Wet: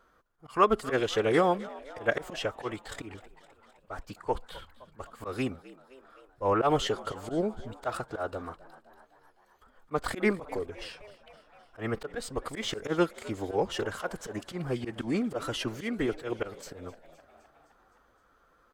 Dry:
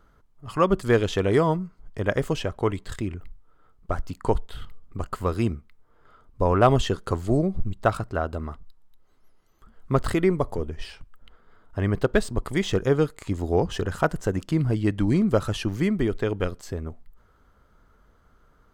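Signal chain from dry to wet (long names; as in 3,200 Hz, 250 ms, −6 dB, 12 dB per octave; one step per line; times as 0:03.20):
bass and treble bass −14 dB, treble −2 dB
phase-vocoder pitch shift with formants kept +2 semitones
volume swells 100 ms
echo with shifted repeats 258 ms, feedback 65%, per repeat +68 Hz, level −19.5 dB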